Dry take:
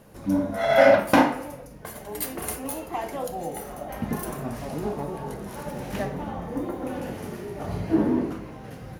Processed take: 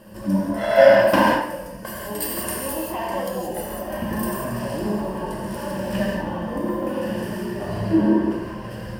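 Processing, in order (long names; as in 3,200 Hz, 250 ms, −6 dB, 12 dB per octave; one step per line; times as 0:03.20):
EQ curve with evenly spaced ripples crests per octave 1.3, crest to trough 11 dB
in parallel at 0 dB: downward compressor, threshold −32 dBFS, peak gain reduction 21.5 dB
on the sum: reverb whose tail is shaped and stops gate 210 ms flat, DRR −2 dB
level −3.5 dB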